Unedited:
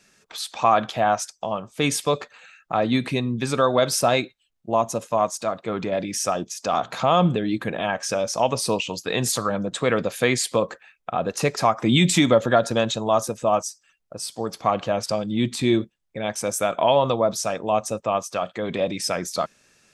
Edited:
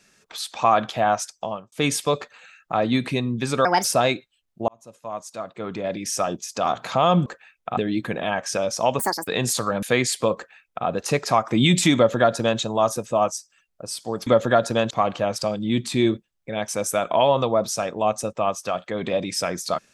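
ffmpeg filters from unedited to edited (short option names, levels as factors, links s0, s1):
-filter_complex "[0:a]asplit=12[s0][s1][s2][s3][s4][s5][s6][s7][s8][s9][s10][s11];[s0]atrim=end=1.72,asetpts=PTS-STARTPTS,afade=t=out:st=1.44:d=0.28[s12];[s1]atrim=start=1.72:end=3.654,asetpts=PTS-STARTPTS,afade=t=in:d=0.004:c=hsin[s13];[s2]atrim=start=3.65:end=3.92,asetpts=PTS-STARTPTS,asetrate=62181,aresample=44100[s14];[s3]atrim=start=3.916:end=4.76,asetpts=PTS-STARTPTS,afade=t=out:st=0.84:d=0.004:c=hsin[s15];[s4]atrim=start=4.76:end=7.342,asetpts=PTS-STARTPTS,afade=t=in:d=1.57[s16];[s5]atrim=start=10.668:end=11.182[s17];[s6]atrim=start=7.338:end=8.564[s18];[s7]atrim=start=8.56:end=9.06,asetpts=PTS-STARTPTS,asetrate=77616,aresample=44100,atrim=end_sample=12528,asetpts=PTS-STARTPTS[s19];[s8]atrim=start=9.056:end=9.612[s20];[s9]atrim=start=10.138:end=14.582[s21];[s10]atrim=start=12.268:end=12.912[s22];[s11]atrim=start=14.578[s23];[s12][s13]concat=n=2:v=0:a=1[s24];[s24][s14]acrossfade=d=0.004:c1=hsin:c2=hsin[s25];[s15][s16]concat=n=2:v=0:a=1[s26];[s25][s26]acrossfade=d=0.004:c1=hsin:c2=hsin[s27];[s27][s17]acrossfade=d=0.004:c1=hsin:c2=hsin[s28];[s28][s18]acrossfade=d=0.004:c1=hsin:c2=hsin[s29];[s29][s19]acrossfade=d=0.004:c1=hsin:c2=hsin[s30];[s30][s20]acrossfade=d=0.004:c1=hsin:c2=hsin[s31];[s31][s21]acrossfade=d=0.004:c1=hsin:c2=hsin[s32];[s32][s22]acrossfade=d=0.004:c1=hsin:c2=hsin[s33];[s33][s23]acrossfade=d=0.004:c1=hsin:c2=hsin"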